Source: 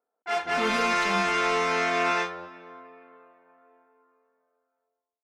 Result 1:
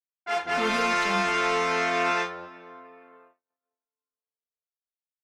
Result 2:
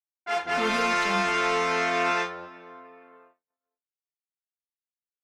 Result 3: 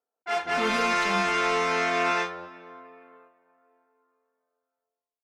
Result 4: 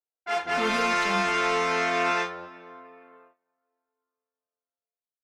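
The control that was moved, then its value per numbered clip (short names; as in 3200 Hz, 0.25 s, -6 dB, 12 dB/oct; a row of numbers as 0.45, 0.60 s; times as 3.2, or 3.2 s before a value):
gate, range: -36, -58, -6, -21 dB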